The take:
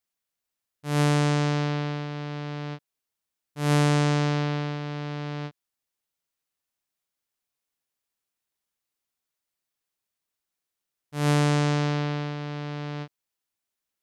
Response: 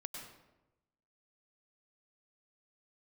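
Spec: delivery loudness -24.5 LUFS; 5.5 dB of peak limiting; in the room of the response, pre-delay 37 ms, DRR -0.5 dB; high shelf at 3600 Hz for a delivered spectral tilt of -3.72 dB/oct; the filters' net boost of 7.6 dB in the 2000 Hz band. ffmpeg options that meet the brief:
-filter_complex "[0:a]equalizer=f=2k:t=o:g=8.5,highshelf=f=3.6k:g=4,alimiter=limit=-11.5dB:level=0:latency=1,asplit=2[a][b];[1:a]atrim=start_sample=2205,adelay=37[c];[b][c]afir=irnorm=-1:irlink=0,volume=2.5dB[d];[a][d]amix=inputs=2:normalize=0,volume=2.5dB"

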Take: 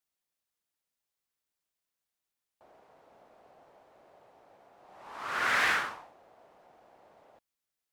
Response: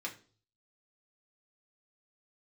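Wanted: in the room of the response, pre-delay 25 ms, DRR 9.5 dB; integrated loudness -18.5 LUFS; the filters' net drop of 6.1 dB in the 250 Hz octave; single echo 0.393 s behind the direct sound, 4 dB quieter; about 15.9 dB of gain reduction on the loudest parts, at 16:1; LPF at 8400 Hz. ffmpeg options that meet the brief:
-filter_complex "[0:a]lowpass=8.4k,equalizer=f=250:t=o:g=-8.5,acompressor=threshold=-39dB:ratio=16,aecho=1:1:393:0.631,asplit=2[a][b];[1:a]atrim=start_sample=2205,adelay=25[c];[b][c]afir=irnorm=-1:irlink=0,volume=-10.5dB[d];[a][d]amix=inputs=2:normalize=0,volume=24.5dB"

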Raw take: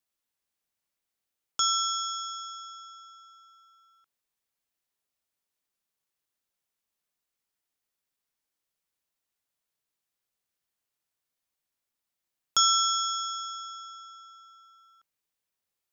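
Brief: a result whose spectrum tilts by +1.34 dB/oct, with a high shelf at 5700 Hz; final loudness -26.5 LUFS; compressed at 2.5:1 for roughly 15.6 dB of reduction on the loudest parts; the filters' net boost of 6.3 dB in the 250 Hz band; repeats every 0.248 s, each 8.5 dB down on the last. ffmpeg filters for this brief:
-af "equalizer=f=250:t=o:g=8,highshelf=f=5.7k:g=-5,acompressor=threshold=-44dB:ratio=2.5,aecho=1:1:248|496|744|992:0.376|0.143|0.0543|0.0206,volume=16dB"

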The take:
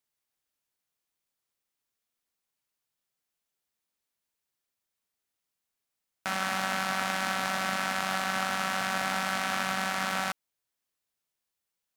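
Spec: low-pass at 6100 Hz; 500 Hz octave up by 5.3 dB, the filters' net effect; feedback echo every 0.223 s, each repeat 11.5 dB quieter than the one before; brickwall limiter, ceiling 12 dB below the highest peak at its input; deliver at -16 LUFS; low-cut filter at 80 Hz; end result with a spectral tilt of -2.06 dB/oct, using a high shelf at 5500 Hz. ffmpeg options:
-af "highpass=80,lowpass=6.1k,equalizer=f=500:t=o:g=6.5,highshelf=f=5.5k:g=9,alimiter=limit=-22dB:level=0:latency=1,aecho=1:1:223|446|669:0.266|0.0718|0.0194,volume=20dB"

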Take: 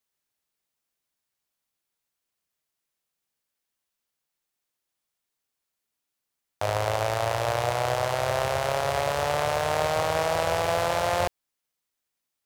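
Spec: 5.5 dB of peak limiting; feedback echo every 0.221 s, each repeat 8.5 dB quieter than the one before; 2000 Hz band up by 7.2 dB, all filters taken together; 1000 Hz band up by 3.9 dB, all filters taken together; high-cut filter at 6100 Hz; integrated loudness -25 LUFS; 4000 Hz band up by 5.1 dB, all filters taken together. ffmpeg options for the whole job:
-af "lowpass=6.1k,equalizer=f=1k:t=o:g=3.5,equalizer=f=2k:t=o:g=7,equalizer=f=4k:t=o:g=4.5,alimiter=limit=-10.5dB:level=0:latency=1,aecho=1:1:221|442|663|884:0.376|0.143|0.0543|0.0206"

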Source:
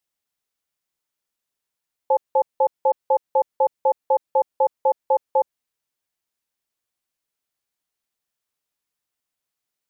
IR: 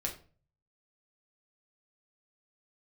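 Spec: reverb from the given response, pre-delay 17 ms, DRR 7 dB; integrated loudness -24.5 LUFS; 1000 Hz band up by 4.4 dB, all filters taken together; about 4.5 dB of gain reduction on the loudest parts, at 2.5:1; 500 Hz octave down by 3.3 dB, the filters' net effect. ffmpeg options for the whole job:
-filter_complex "[0:a]equalizer=f=500:t=o:g=-5,equalizer=f=1k:t=o:g=7,acompressor=threshold=-19dB:ratio=2.5,asplit=2[a][b];[1:a]atrim=start_sample=2205,adelay=17[c];[b][c]afir=irnorm=-1:irlink=0,volume=-9dB[d];[a][d]amix=inputs=2:normalize=0,volume=0.5dB"

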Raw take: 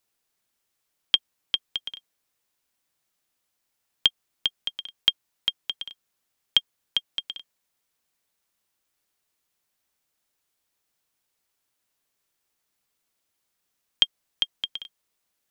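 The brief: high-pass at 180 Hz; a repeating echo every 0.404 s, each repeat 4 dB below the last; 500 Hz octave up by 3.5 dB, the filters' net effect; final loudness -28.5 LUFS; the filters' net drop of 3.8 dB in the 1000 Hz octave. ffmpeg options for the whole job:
-af "highpass=180,equalizer=f=500:t=o:g=6.5,equalizer=f=1k:t=o:g=-7,aecho=1:1:404|808|1212|1616|2020|2424|2828|3232|3636:0.631|0.398|0.25|0.158|0.0994|0.0626|0.0394|0.0249|0.0157,volume=-1.5dB"

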